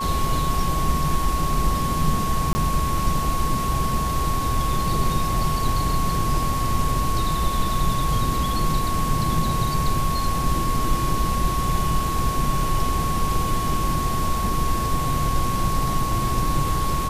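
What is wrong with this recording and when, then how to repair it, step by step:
whine 1.1 kHz -25 dBFS
2.53–2.55 s: dropout 20 ms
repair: band-stop 1.1 kHz, Q 30; interpolate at 2.53 s, 20 ms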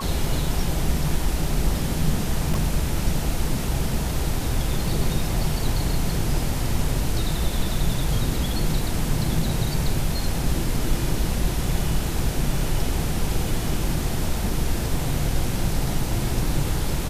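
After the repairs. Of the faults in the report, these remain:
nothing left

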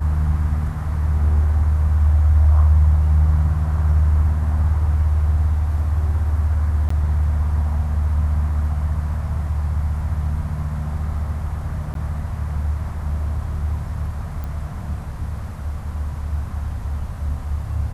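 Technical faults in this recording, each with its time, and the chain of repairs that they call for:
6.89–6.90 s: dropout 14 ms
11.94–11.95 s: dropout 12 ms
14.44 s: pop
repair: de-click; interpolate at 6.89 s, 14 ms; interpolate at 11.94 s, 12 ms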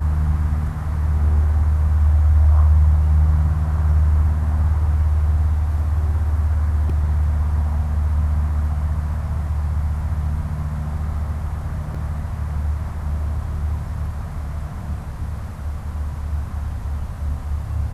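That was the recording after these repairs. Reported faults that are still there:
nothing left

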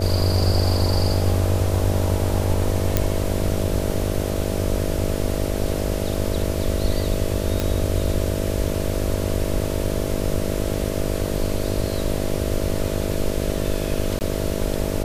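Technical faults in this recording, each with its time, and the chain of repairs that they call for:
buzz 50 Hz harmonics 13 -26 dBFS
2.97 s: pop -3 dBFS
7.60 s: pop
14.19–14.21 s: dropout 19 ms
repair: de-click; de-hum 50 Hz, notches 13; interpolate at 14.19 s, 19 ms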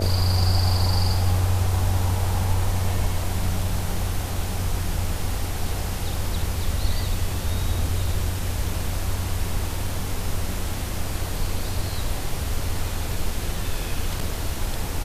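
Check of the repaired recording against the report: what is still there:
nothing left

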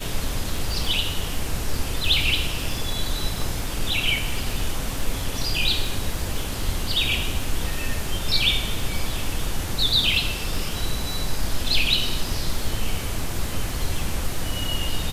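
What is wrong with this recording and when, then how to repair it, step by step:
crackle 42 per s -30 dBFS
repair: de-click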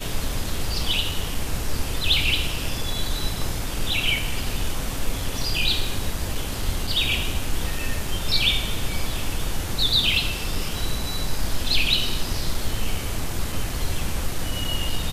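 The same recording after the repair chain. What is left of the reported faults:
nothing left

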